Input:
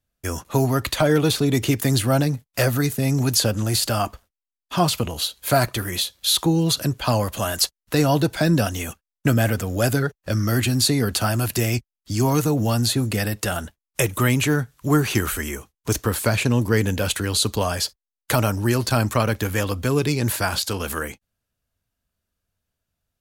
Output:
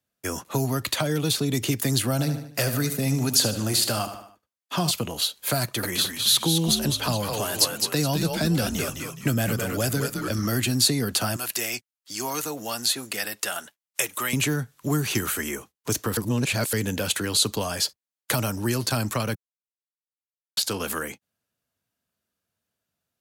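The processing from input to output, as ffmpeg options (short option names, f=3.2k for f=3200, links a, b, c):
-filter_complex "[0:a]asettb=1/sr,asplit=3[a][b][c];[a]atrim=end=2.114[d];[b]atrim=start=2.11:end=4.91,asetpts=PTS-STARTPTS,afade=t=in:d=0.004:c=qsin,afade=t=out:st=2.796:d=0.004:c=qsin,aecho=1:1:74|148|222|296:0.282|0.121|0.0521|0.0224,atrim=end_sample=123480[e];[c]atrim=start=4.906[f];[d][e]acrossfade=d=0.004:c1=hsin:c2=qsin[g];[g][f]acrossfade=d=0.004:c1=qsin:c2=hsin,asettb=1/sr,asplit=3[h][i][j];[h]atrim=end=5.624[k];[i]atrim=start=5.62:end=10.47,asetpts=PTS-STARTPTS,afade=t=in:d=0.004:c=qsin,afade=t=out:st=4.846:d=0.004:c=qsin,asplit=6[l][m][n][o][p][q];[m]adelay=210,afreqshift=-110,volume=-5dB[r];[n]adelay=420,afreqshift=-220,volume=-13.6dB[s];[o]adelay=630,afreqshift=-330,volume=-22.3dB[t];[p]adelay=840,afreqshift=-440,volume=-30.9dB[u];[q]adelay=1050,afreqshift=-550,volume=-39.5dB[v];[l][r][s][t][u][v]amix=inputs=6:normalize=0,atrim=end_sample=213885[w];[j]atrim=start=10.466[x];[k][w]acrossfade=d=0.004:c1=hsin:c2=qsin[y];[y][x]acrossfade=d=0.004:c1=qsin:c2=hsin,asettb=1/sr,asplit=3[z][aa][ab];[z]atrim=end=11.364[ac];[aa]atrim=start=11.36:end=14.33,asetpts=PTS-STARTPTS,afade=t=in:d=0.004:c=qsin,afade=t=out:st=2.966:d=0.004:c=qsin,highpass=f=1.2k:p=1[ad];[ab]atrim=start=14.326[ae];[ac][ad]acrossfade=d=0.004:c1=hsin:c2=qsin[af];[af][ae]acrossfade=d=0.004:c1=qsin:c2=hsin,asplit=5[ag][ah][ai][aj][ak];[ag]atrim=end=16.172[al];[ah]atrim=start=16.168:end=16.732,asetpts=PTS-STARTPTS,areverse[am];[ai]atrim=start=16.728:end=19.35,asetpts=PTS-STARTPTS,afade=t=out:st=2.618:d=0.004:c=hsin[an];[aj]atrim=start=19.35:end=20.57,asetpts=PTS-STARTPTS,volume=0[ao];[ak]atrim=start=20.57,asetpts=PTS-STARTPTS,afade=t=in:d=0.004:c=hsin[ap];[al][am]acrossfade=d=0.004:c1=hsin:c2=hsin[aq];[an][ao][ap]concat=n=3:v=0:a=1[ar];[aq][ar]acrossfade=d=0.004:c1=hsin:c2=hsin,highpass=150,acrossover=split=190|3000[as][at][au];[at]acompressor=threshold=-26dB:ratio=6[av];[as][av][au]amix=inputs=3:normalize=0"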